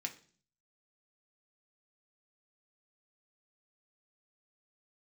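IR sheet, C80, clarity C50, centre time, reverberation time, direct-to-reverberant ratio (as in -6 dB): 19.0 dB, 14.5 dB, 9 ms, 0.45 s, 2.5 dB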